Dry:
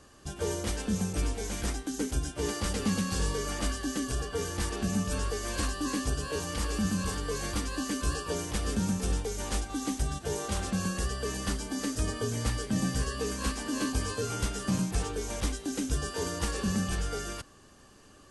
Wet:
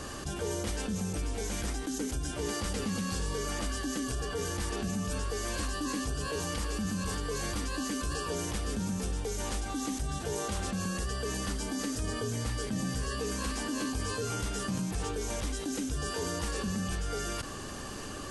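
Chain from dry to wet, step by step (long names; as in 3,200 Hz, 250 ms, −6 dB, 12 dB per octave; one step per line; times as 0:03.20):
envelope flattener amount 70%
level −6.5 dB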